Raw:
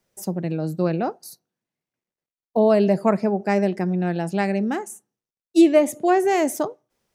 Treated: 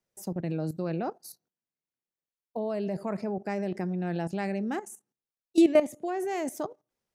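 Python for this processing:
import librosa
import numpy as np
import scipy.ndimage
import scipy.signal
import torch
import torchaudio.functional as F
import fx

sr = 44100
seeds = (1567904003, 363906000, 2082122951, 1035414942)

y = fx.level_steps(x, sr, step_db=14)
y = y * librosa.db_to_amplitude(-2.5)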